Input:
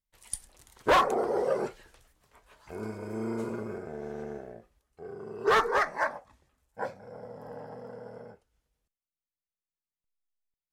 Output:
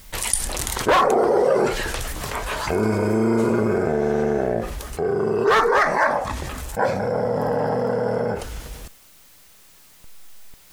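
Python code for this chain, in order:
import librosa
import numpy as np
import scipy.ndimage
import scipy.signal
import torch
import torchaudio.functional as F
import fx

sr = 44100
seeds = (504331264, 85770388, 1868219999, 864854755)

y = fx.env_flatten(x, sr, amount_pct=70)
y = y * librosa.db_to_amplitude(4.5)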